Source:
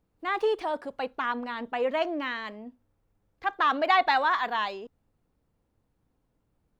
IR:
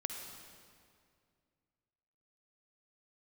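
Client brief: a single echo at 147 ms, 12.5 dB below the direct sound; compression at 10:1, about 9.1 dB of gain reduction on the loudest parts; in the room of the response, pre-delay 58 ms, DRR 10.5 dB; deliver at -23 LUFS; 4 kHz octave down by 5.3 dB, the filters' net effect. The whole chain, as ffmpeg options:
-filter_complex "[0:a]equalizer=f=4000:t=o:g=-7,acompressor=threshold=0.0447:ratio=10,aecho=1:1:147:0.237,asplit=2[s0][s1];[1:a]atrim=start_sample=2205,adelay=58[s2];[s1][s2]afir=irnorm=-1:irlink=0,volume=0.282[s3];[s0][s3]amix=inputs=2:normalize=0,volume=2.99"

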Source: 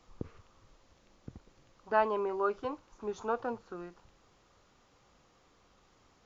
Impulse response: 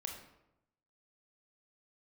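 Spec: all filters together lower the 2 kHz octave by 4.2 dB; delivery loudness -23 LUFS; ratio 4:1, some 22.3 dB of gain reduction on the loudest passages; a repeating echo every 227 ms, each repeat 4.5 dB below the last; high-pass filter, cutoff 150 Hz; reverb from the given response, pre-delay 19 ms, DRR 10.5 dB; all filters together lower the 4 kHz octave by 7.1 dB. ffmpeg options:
-filter_complex "[0:a]highpass=150,equalizer=f=2000:t=o:g=-5,equalizer=f=4000:t=o:g=-8,acompressor=threshold=0.00316:ratio=4,aecho=1:1:227|454|681|908|1135|1362|1589|1816|2043:0.596|0.357|0.214|0.129|0.0772|0.0463|0.0278|0.0167|0.01,asplit=2[s0][s1];[1:a]atrim=start_sample=2205,adelay=19[s2];[s1][s2]afir=irnorm=-1:irlink=0,volume=0.355[s3];[s0][s3]amix=inputs=2:normalize=0,volume=31.6"

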